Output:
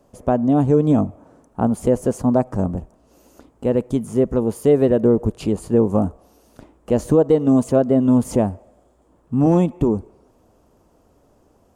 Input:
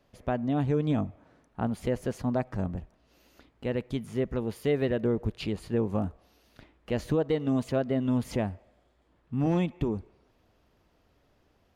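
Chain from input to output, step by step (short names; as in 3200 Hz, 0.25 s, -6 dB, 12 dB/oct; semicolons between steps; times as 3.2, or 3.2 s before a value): graphic EQ 250/500/1000/2000/4000/8000 Hz +4/+4/+4/-9/-9/+10 dB; gain +7.5 dB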